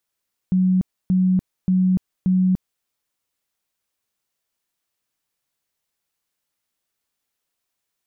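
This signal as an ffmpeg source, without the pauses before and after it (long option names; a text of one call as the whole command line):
ffmpeg -f lavfi -i "aevalsrc='0.2*sin(2*PI*185*mod(t,0.58))*lt(mod(t,0.58),54/185)':duration=2.32:sample_rate=44100" out.wav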